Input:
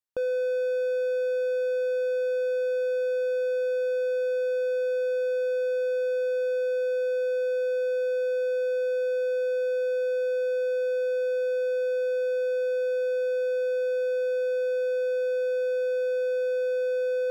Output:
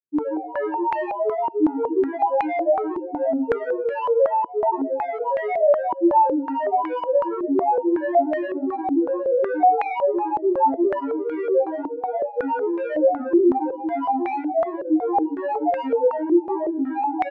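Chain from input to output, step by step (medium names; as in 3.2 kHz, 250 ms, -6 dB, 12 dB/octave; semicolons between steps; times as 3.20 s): granulator, grains 17 per s, pitch spread up and down by 12 st; doubling 26 ms -4 dB; feedback delay 133 ms, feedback 34%, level -18 dB; step-sequenced low-pass 5.4 Hz 340–2100 Hz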